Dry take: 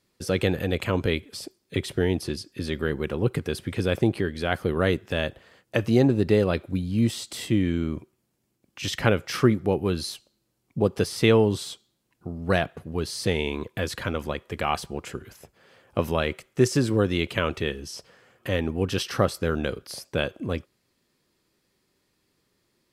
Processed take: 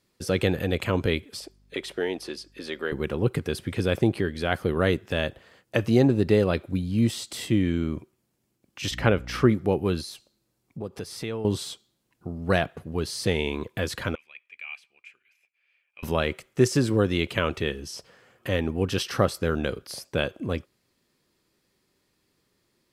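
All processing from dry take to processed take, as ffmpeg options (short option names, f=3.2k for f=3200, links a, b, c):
-filter_complex "[0:a]asettb=1/sr,asplit=3[a][b][c];[a]atrim=end=1.404[d];[b]atrim=start=1.4:end=2.92,asetpts=PTS-STARTPTS,afade=t=in:d=0.004:c=qsin,afade=t=out:st=1.516:d=0.004:c=qsin,highpass=400,highshelf=f=7.6k:g=-8.5,aeval=exprs='val(0)+0.00112*(sin(2*PI*50*n/s)+sin(2*PI*2*50*n/s)/2+sin(2*PI*3*50*n/s)/3+sin(2*PI*4*50*n/s)/4+sin(2*PI*5*50*n/s)/5)':c=same[e];[c]atrim=start=2.916[f];[d][e]acrossfade=d=0.004:c1=hsin:c2=qsin[g];[g][f]acrossfade=d=0.004:c1=qsin:c2=hsin,asettb=1/sr,asplit=3[h][i][j];[h]atrim=end=8.914[k];[i]atrim=start=8.91:end=9.49,asetpts=PTS-STARTPTS,afade=t=in:d=0.004:c=qsin,afade=t=out:st=0.576:d=0.004:c=qsin,highshelf=f=4.9k:g=-8.5,aeval=exprs='val(0)+0.0126*(sin(2*PI*60*n/s)+sin(2*PI*2*60*n/s)/2+sin(2*PI*3*60*n/s)/3+sin(2*PI*4*60*n/s)/4+sin(2*PI*5*60*n/s)/5)':c=same[l];[j]atrim=start=9.486[m];[k][l]acrossfade=d=0.004:c1=hsin:c2=qsin[n];[n][m]acrossfade=d=0.004:c1=qsin:c2=hsin,asettb=1/sr,asplit=3[o][p][q];[o]atrim=end=10.014[r];[p]atrim=start=10.01:end=11.45,asetpts=PTS-STARTPTS,afade=t=in:d=0.004:c=qsin,afade=t=out:st=1.436:d=0.004:c=qsin,bandreject=f=3k:w=22,acompressor=threshold=-39dB:ratio=2:attack=3.2:release=140:knee=1:detection=peak[s];[q]atrim=start=11.446[t];[r][s]acrossfade=d=0.004:c1=hsin:c2=qsin[u];[u][t]acrossfade=d=0.004:c1=qsin:c2=hsin,asettb=1/sr,asplit=3[v][w][x];[v]atrim=end=14.154[y];[w]atrim=start=14.15:end=16.03,asetpts=PTS-STARTPTS,afade=t=in:d=0.004:c=qsin,afade=t=out:st=1.876:d=0.004:c=qsin,bandpass=f=2.4k:t=q:w=14,aemphasis=mode=production:type=50kf[z];[x]atrim=start=16.026[aa];[y][z]acrossfade=d=0.004:c1=hsin:c2=qsin[ab];[ab][aa]acrossfade=d=0.004:c1=qsin:c2=hsin"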